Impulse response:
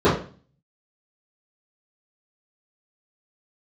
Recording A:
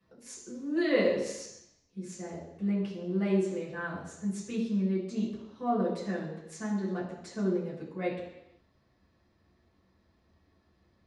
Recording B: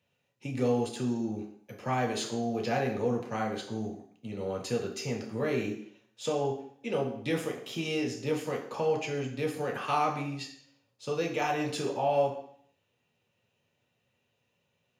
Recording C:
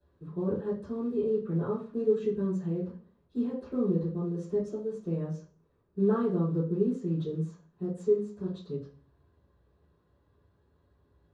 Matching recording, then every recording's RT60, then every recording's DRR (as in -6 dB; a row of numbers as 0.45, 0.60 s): C; 0.85, 0.60, 0.40 s; -8.0, -1.0, -14.5 dB